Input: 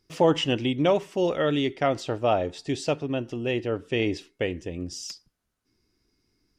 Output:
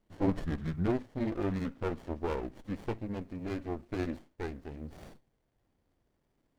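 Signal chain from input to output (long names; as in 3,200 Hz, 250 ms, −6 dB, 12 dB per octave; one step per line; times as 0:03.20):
pitch glide at a constant tempo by −9.5 semitones ending unshifted
background noise pink −68 dBFS
windowed peak hold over 33 samples
level −6.5 dB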